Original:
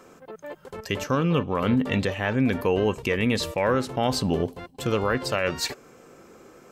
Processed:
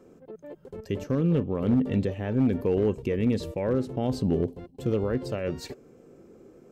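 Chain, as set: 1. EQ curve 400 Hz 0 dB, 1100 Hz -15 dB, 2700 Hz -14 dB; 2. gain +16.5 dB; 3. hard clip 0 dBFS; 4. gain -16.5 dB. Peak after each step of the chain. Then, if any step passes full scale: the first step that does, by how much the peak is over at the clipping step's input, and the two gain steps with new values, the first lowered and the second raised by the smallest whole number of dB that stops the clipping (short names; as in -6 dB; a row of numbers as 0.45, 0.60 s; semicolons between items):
-13.0, +3.5, 0.0, -16.5 dBFS; step 2, 3.5 dB; step 2 +12.5 dB, step 4 -12.5 dB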